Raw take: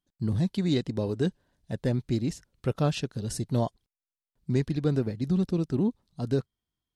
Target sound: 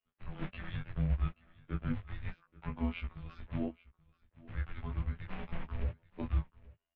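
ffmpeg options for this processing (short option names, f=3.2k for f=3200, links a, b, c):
-filter_complex "[0:a]adynamicequalizer=threshold=0.0126:dfrequency=460:dqfactor=1.3:tfrequency=460:tqfactor=1.3:attack=5:release=100:ratio=0.375:range=2:mode=boostabove:tftype=bell,asplit=3[a][b][c];[a]afade=t=out:st=2.3:d=0.02[d];[b]acompressor=threshold=-36dB:ratio=2.5,afade=t=in:st=2.3:d=0.02,afade=t=out:st=3.51:d=0.02[e];[c]afade=t=in:st=3.51:d=0.02[f];[d][e][f]amix=inputs=3:normalize=0,alimiter=limit=-23dB:level=0:latency=1:release=307,afftfilt=real='hypot(re,im)*cos(PI*b)':imag='0':win_size=2048:overlap=0.75,flanger=delay=16.5:depth=5:speed=0.35,acrusher=bits=5:mode=log:mix=0:aa=0.000001,aecho=1:1:831:0.0841,highpass=f=370:t=q:w=0.5412,highpass=f=370:t=q:w=1.307,lowpass=f=3k:t=q:w=0.5176,lowpass=f=3k:t=q:w=0.7071,lowpass=f=3k:t=q:w=1.932,afreqshift=-360,volume=9.5dB"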